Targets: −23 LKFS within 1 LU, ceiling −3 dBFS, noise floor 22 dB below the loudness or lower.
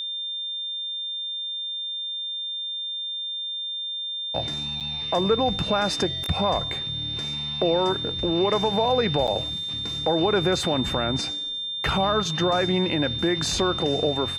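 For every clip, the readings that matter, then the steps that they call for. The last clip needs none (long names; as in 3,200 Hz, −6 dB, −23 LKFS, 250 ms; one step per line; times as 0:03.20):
number of dropouts 2; longest dropout 7.6 ms; interfering tone 3,600 Hz; level of the tone −28 dBFS; integrated loudness −24.5 LKFS; sample peak −10.5 dBFS; target loudness −23.0 LKFS
→ repair the gap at 0:04.80/0:09.27, 7.6 ms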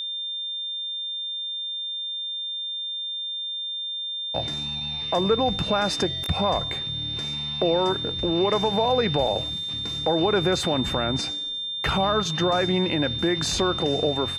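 number of dropouts 0; interfering tone 3,600 Hz; level of the tone −28 dBFS
→ notch filter 3,600 Hz, Q 30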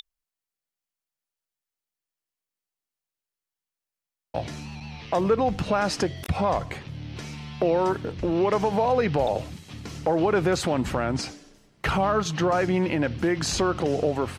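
interfering tone none found; integrated loudness −25.0 LKFS; sample peak −11.5 dBFS; target loudness −23.0 LKFS
→ level +2 dB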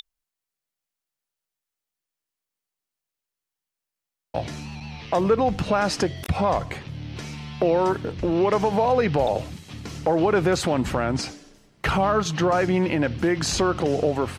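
integrated loudness −23.0 LKFS; sample peak −9.5 dBFS; background noise floor −87 dBFS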